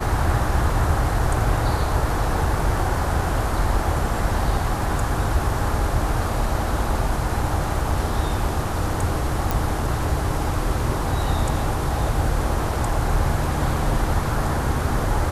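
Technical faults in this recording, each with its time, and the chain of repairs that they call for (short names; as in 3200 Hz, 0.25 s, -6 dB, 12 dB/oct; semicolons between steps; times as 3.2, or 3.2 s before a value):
9.51 pop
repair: de-click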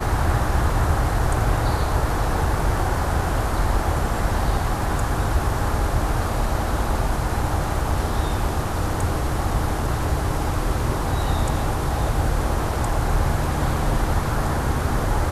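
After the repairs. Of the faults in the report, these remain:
none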